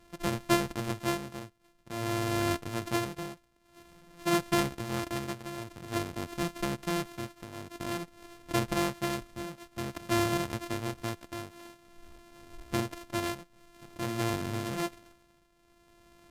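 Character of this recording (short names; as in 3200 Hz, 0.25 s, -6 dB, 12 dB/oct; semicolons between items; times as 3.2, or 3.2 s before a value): a buzz of ramps at a fixed pitch in blocks of 128 samples; tremolo triangle 0.5 Hz, depth 80%; AAC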